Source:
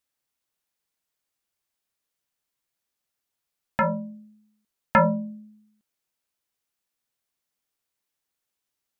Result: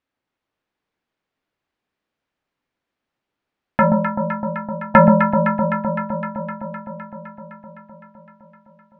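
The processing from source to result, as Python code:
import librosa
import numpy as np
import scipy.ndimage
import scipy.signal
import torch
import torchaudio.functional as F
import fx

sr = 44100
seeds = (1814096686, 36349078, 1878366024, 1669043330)

y = scipy.signal.sosfilt(scipy.signal.butter(2, 2500.0, 'lowpass', fs=sr, output='sos'), x)
y = fx.peak_eq(y, sr, hz=280.0, db=5.0, octaves=1.3)
y = fx.echo_alternate(y, sr, ms=128, hz=1000.0, feedback_pct=86, wet_db=-4.0)
y = y * librosa.db_to_amplitude(6.5)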